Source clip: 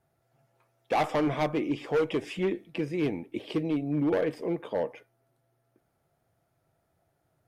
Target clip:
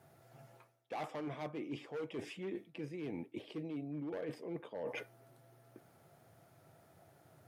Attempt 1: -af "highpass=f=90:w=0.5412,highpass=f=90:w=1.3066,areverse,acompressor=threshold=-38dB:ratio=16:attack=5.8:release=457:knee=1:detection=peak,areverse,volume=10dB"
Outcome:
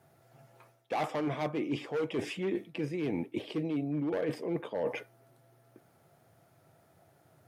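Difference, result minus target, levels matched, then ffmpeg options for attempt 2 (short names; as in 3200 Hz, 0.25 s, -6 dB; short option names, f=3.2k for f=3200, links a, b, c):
compressor: peak gain reduction -9.5 dB
-af "highpass=f=90:w=0.5412,highpass=f=90:w=1.3066,areverse,acompressor=threshold=-48dB:ratio=16:attack=5.8:release=457:knee=1:detection=peak,areverse,volume=10dB"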